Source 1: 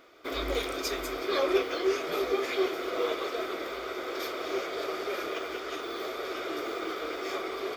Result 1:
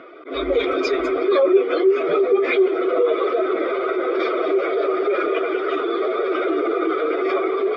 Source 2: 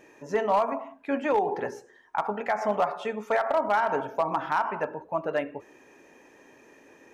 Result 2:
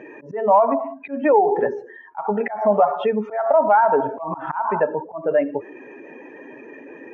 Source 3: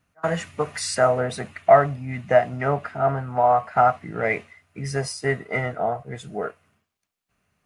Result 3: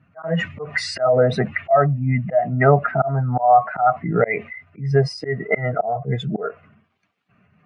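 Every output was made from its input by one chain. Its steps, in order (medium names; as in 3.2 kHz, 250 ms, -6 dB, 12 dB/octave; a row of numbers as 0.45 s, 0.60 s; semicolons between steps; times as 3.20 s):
spectral contrast enhancement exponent 1.7; in parallel at +3 dB: compression 6:1, threshold -33 dBFS; on the sum: slow attack 198 ms; Chebyshev band-pass 130–2700 Hz, order 2; normalise loudness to -20 LUFS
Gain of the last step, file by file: +8.5 dB, +7.5 dB, +7.5 dB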